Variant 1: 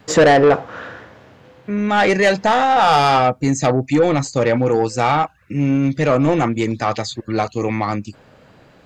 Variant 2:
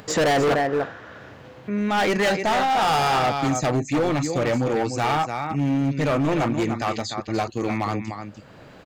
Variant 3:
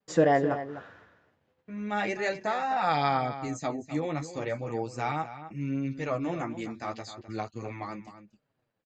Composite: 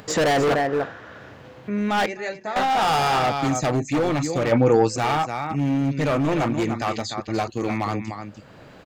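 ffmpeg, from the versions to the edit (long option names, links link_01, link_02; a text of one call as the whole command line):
ffmpeg -i take0.wav -i take1.wav -i take2.wav -filter_complex "[1:a]asplit=3[link_01][link_02][link_03];[link_01]atrim=end=2.062[link_04];[2:a]atrim=start=2.058:end=2.562[link_05];[link_02]atrim=start=2.558:end=4.522[link_06];[0:a]atrim=start=4.518:end=4.962[link_07];[link_03]atrim=start=4.958[link_08];[link_04][link_05]acrossfade=duration=0.004:curve1=hsin:curve2=hsin[link_09];[link_09][link_06]acrossfade=duration=0.004:curve1=hsin:curve2=hsin[link_10];[link_10][link_07]acrossfade=duration=0.004:curve1=hsin:curve2=hsin[link_11];[link_11][link_08]acrossfade=duration=0.004:curve1=hsin:curve2=hsin" out.wav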